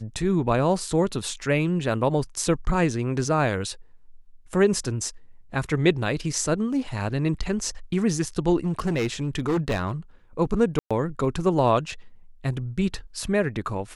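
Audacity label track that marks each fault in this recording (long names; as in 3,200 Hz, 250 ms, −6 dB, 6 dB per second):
8.650000	9.920000	clipping −20 dBFS
10.790000	10.910000	drop-out 116 ms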